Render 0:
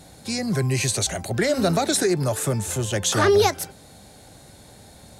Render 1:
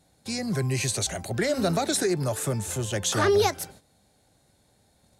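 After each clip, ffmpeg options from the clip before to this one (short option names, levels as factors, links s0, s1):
-af "agate=range=0.224:threshold=0.00708:ratio=16:detection=peak,volume=0.631"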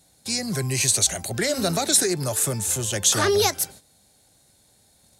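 -af "highshelf=f=3400:g=11.5"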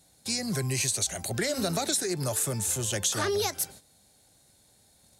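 -af "acompressor=threshold=0.0794:ratio=6,volume=0.75"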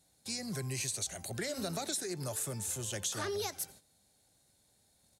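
-af "aecho=1:1:86:0.0668,volume=0.376"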